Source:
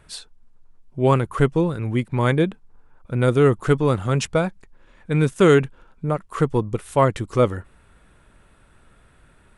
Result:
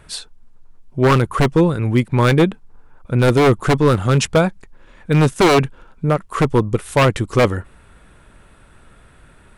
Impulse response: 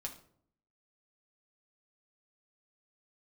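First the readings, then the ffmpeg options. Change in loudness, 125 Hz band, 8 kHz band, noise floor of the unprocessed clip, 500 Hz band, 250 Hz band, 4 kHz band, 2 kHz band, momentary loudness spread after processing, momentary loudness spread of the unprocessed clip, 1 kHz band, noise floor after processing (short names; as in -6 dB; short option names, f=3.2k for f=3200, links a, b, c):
+4.0 dB, +4.5 dB, +7.5 dB, -55 dBFS, +3.0 dB, +4.5 dB, +8.5 dB, +6.5 dB, 9 LU, 12 LU, +5.5 dB, -48 dBFS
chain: -af "aeval=exprs='0.237*(abs(mod(val(0)/0.237+3,4)-2)-1)':c=same,volume=6.5dB"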